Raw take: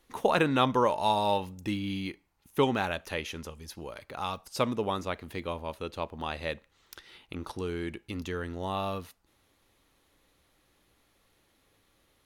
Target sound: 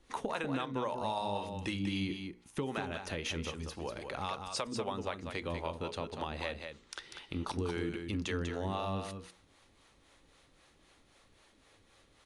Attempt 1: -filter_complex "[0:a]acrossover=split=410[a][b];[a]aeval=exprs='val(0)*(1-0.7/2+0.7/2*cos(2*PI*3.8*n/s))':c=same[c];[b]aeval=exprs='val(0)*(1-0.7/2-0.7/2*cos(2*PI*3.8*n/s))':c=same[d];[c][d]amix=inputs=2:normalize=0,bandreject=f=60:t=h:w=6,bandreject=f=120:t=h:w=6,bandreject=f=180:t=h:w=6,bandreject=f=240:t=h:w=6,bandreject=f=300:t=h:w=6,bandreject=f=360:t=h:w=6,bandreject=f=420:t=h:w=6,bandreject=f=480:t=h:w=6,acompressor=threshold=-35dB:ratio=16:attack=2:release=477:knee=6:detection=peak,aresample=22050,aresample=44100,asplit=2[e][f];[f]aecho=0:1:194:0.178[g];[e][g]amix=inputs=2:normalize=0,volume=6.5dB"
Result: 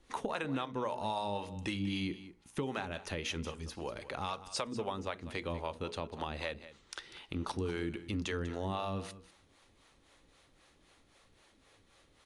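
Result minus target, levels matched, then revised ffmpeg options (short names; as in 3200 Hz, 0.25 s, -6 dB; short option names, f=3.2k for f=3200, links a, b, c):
echo-to-direct -8.5 dB
-filter_complex "[0:a]acrossover=split=410[a][b];[a]aeval=exprs='val(0)*(1-0.7/2+0.7/2*cos(2*PI*3.8*n/s))':c=same[c];[b]aeval=exprs='val(0)*(1-0.7/2-0.7/2*cos(2*PI*3.8*n/s))':c=same[d];[c][d]amix=inputs=2:normalize=0,bandreject=f=60:t=h:w=6,bandreject=f=120:t=h:w=6,bandreject=f=180:t=h:w=6,bandreject=f=240:t=h:w=6,bandreject=f=300:t=h:w=6,bandreject=f=360:t=h:w=6,bandreject=f=420:t=h:w=6,bandreject=f=480:t=h:w=6,acompressor=threshold=-35dB:ratio=16:attack=2:release=477:knee=6:detection=peak,aresample=22050,aresample=44100,asplit=2[e][f];[f]aecho=0:1:194:0.473[g];[e][g]amix=inputs=2:normalize=0,volume=6.5dB"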